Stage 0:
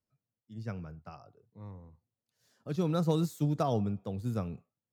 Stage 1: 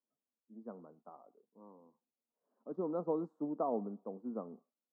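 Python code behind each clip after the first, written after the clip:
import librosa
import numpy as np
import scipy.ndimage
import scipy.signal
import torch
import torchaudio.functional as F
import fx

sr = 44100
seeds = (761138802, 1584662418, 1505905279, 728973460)

y = scipy.signal.sosfilt(scipy.signal.ellip(3, 1.0, 40, [230.0, 1100.0], 'bandpass', fs=sr, output='sos'), x)
y = y * librosa.db_to_amplitude(-3.0)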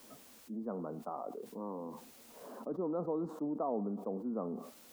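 y = fx.env_flatten(x, sr, amount_pct=70)
y = y * librosa.db_to_amplitude(-2.5)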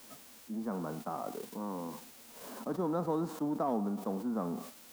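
y = fx.envelope_flatten(x, sr, power=0.6)
y = y * librosa.db_to_amplitude(3.0)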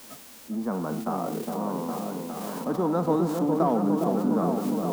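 y = fx.echo_opening(x, sr, ms=409, hz=750, octaves=1, feedback_pct=70, wet_db=-3)
y = y * librosa.db_to_amplitude(7.5)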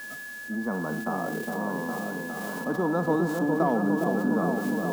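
y = x + 10.0 ** (-36.0 / 20.0) * np.sin(2.0 * np.pi * 1700.0 * np.arange(len(x)) / sr)
y = y * librosa.db_to_amplitude(-1.0)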